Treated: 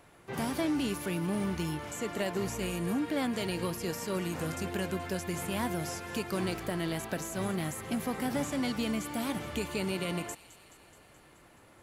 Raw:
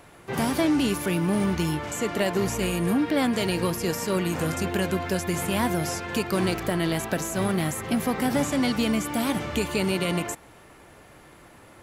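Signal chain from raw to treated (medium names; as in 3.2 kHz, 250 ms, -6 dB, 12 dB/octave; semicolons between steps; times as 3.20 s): feedback echo behind a high-pass 213 ms, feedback 69%, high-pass 3 kHz, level -14.5 dB; trim -8 dB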